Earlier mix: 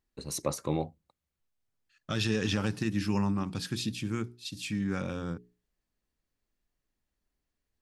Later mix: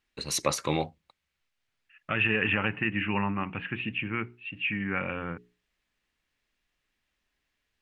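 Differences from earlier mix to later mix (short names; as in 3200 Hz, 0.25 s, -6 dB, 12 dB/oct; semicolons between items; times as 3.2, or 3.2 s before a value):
second voice: add rippled Chebyshev low-pass 2900 Hz, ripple 3 dB; master: add bell 2500 Hz +15 dB 2.5 oct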